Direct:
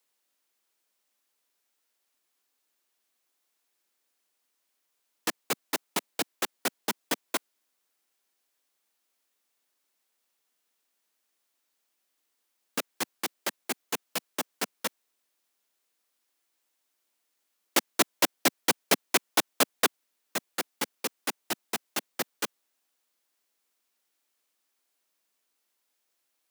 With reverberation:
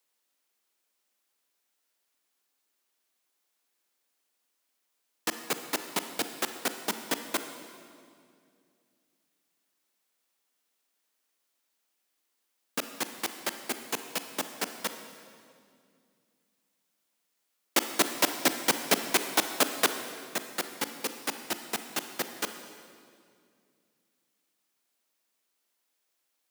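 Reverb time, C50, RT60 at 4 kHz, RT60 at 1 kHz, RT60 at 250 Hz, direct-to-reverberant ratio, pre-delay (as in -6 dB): 2.3 s, 8.5 dB, 1.9 s, 2.1 s, 2.9 s, 8.0 dB, 34 ms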